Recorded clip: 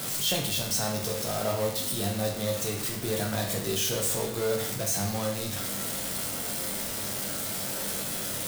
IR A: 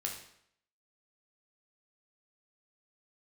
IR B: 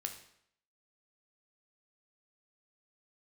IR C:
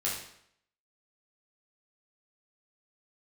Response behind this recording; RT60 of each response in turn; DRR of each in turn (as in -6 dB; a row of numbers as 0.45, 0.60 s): A; 0.70, 0.70, 0.70 s; 0.0, 4.5, -6.5 dB